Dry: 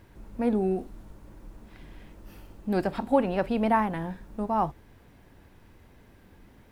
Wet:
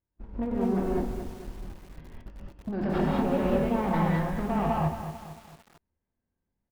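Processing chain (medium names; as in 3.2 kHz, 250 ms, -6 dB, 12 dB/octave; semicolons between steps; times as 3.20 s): gate -42 dBFS, range -44 dB; treble shelf 2.3 kHz -7.5 dB; compressor with a negative ratio -31 dBFS, ratio -1; saturation -31 dBFS, distortion -10 dB; distance through air 170 m; doubling 25 ms -10.5 dB; gated-style reverb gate 230 ms rising, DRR -4.5 dB; bit-crushed delay 223 ms, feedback 55%, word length 8-bit, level -9.5 dB; trim +4 dB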